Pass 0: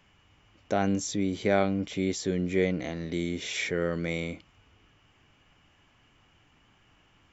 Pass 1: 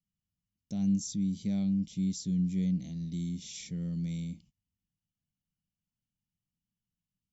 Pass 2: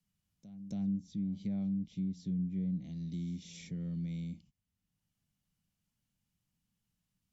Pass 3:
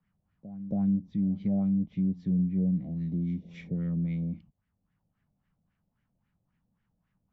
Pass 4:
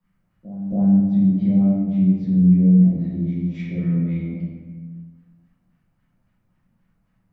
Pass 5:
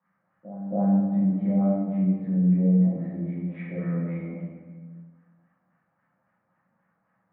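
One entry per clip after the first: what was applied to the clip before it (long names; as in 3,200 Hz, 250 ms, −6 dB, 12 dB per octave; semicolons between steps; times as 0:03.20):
noise gate −52 dBFS, range −22 dB; drawn EQ curve 110 Hz 0 dB, 190 Hz +9 dB, 390 Hz −19 dB, 940 Hz −21 dB, 1,500 Hz −29 dB, 2,700 Hz −12 dB, 5,000 Hz +1 dB; level −5.5 dB
treble cut that deepens with the level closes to 1,100 Hz, closed at −26 dBFS; echo ahead of the sound 275 ms −21 dB; multiband upward and downward compressor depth 40%; level −5 dB
auto-filter low-pass sine 3.7 Hz 570–1,900 Hz; level +7.5 dB
convolution reverb RT60 1.5 s, pre-delay 3 ms, DRR −8.5 dB
loudspeaker in its box 240–2,100 Hz, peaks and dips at 250 Hz −5 dB, 370 Hz −5 dB, 550 Hz +6 dB, 820 Hz +6 dB, 1,200 Hz +6 dB, 1,700 Hz +6 dB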